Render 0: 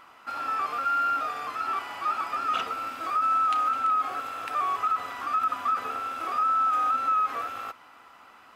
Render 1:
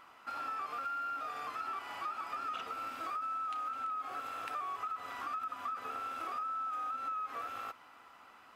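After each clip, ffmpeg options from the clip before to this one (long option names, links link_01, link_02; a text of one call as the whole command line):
ffmpeg -i in.wav -af "acompressor=threshold=-31dB:ratio=6,volume=-5.5dB" out.wav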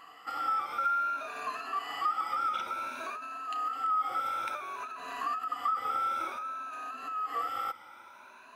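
ffmpeg -i in.wav -af "afftfilt=real='re*pow(10,15/40*sin(2*PI*(1.5*log(max(b,1)*sr/1024/100)/log(2)-(0.56)*(pts-256)/sr)))':imag='im*pow(10,15/40*sin(2*PI*(1.5*log(max(b,1)*sr/1024/100)/log(2)-(0.56)*(pts-256)/sr)))':win_size=1024:overlap=0.75,lowshelf=frequency=120:gain=-9.5,volume=3dB" out.wav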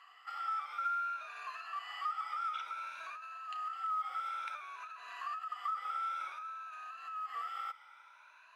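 ffmpeg -i in.wav -af "acrusher=bits=8:mode=log:mix=0:aa=0.000001,highpass=1400,aemphasis=mode=reproduction:type=50fm,volume=-2.5dB" out.wav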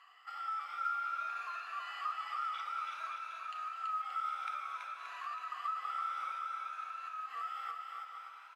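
ffmpeg -i in.wav -af "aecho=1:1:330|577.5|763.1|902.3|1007:0.631|0.398|0.251|0.158|0.1,volume=-2dB" out.wav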